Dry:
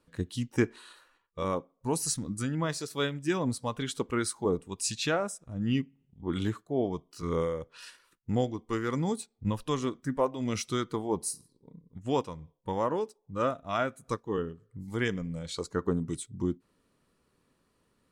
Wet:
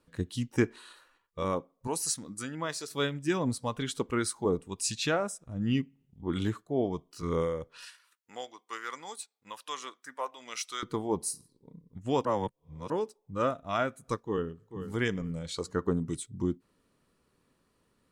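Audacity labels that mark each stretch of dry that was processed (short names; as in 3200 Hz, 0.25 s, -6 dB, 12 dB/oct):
1.870000	2.880000	HPF 490 Hz 6 dB/oct
7.850000	10.830000	HPF 1000 Hz
12.250000	12.900000	reverse
14.200000	14.870000	echo throw 0.44 s, feedback 30%, level -10.5 dB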